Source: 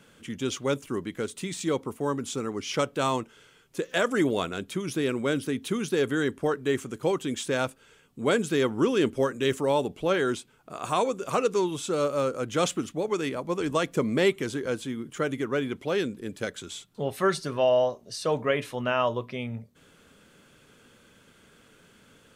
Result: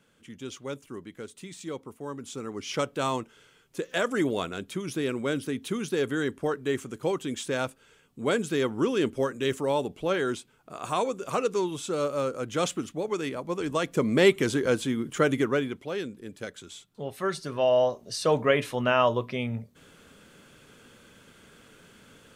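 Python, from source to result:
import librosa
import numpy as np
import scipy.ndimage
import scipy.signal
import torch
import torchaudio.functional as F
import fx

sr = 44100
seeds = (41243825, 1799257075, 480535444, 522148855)

y = fx.gain(x, sr, db=fx.line((2.07, -9.0), (2.7, -2.0), (13.76, -2.0), (14.41, 5.0), (15.42, 5.0), (15.85, -5.5), (17.22, -5.5), (18.04, 3.0)))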